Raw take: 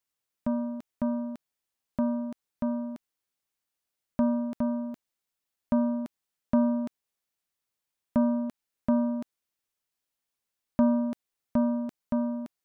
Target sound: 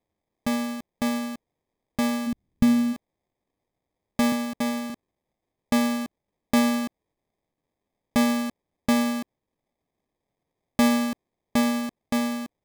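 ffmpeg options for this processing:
-filter_complex "[0:a]asettb=1/sr,asplit=3[a][b][c];[a]atrim=end=4.324[d];[b]atrim=start=4.32:end=4.9,asetpts=PTS-STARTPTS,afade=t=in:d=0.004:c=qsin,afade=t=out:st=0.576:d=0.004:c=qsin,highpass=190[e];[c]atrim=start=4.896[f];[d][e]acrossfade=d=0.004:c1=hsin:c2=qsin[g];[g][f]acrossfade=d=0.004:c1=qsin:c2=hsin,acrusher=samples=31:mix=1:aa=0.000001,asplit=3[h][i][j];[h]afade=t=out:st=2.26:d=0.02[k];[i]asubboost=boost=8:cutoff=240,afade=t=in:st=2.26:d=0.02,afade=t=out:st=2.92:d=0.02[l];[j]afade=t=in:st=2.92:d=0.02[m];[k][l][m]amix=inputs=3:normalize=0,volume=3dB"

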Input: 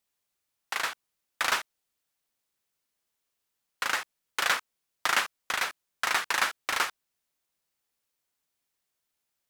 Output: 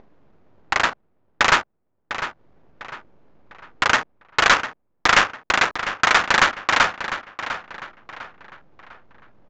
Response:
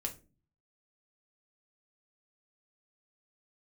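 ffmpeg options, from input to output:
-filter_complex "[0:a]aeval=exprs='if(lt(val(0),0),0.251*val(0),val(0))':c=same,highpass=f=300:p=1,highshelf=f=4.2k:g=-3,acompressor=mode=upward:threshold=-34dB:ratio=2.5,acrusher=bits=8:mix=0:aa=0.000001,adynamicsmooth=sensitivity=5:basefreq=520,aeval=exprs='0.224*sin(PI/2*2*val(0)/0.224)':c=same,asplit=2[a][b];[b]adelay=701,lowpass=f=3.9k:p=1,volume=-10.5dB,asplit=2[c][d];[d]adelay=701,lowpass=f=3.9k:p=1,volume=0.39,asplit=2[e][f];[f]adelay=701,lowpass=f=3.9k:p=1,volume=0.39,asplit=2[g][h];[h]adelay=701,lowpass=f=3.9k:p=1,volume=0.39[i];[c][e][g][i]amix=inputs=4:normalize=0[j];[a][j]amix=inputs=2:normalize=0,aresample=16000,aresample=44100,volume=7.5dB"

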